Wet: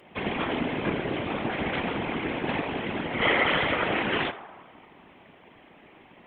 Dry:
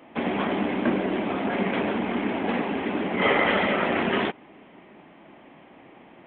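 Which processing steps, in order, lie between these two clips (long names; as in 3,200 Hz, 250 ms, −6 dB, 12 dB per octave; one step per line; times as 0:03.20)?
high-shelf EQ 2,100 Hz +8.5 dB
feedback echo with a band-pass in the loop 80 ms, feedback 77%, band-pass 940 Hz, level −12.5 dB
random phases in short frames
level −4.5 dB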